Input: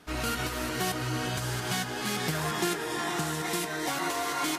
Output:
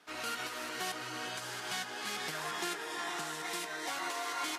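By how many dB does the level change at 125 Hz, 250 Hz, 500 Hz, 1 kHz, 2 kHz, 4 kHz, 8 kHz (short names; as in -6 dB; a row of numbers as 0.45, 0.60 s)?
-21.0, -13.5, -9.5, -6.0, -5.0, -5.0, -7.0 dB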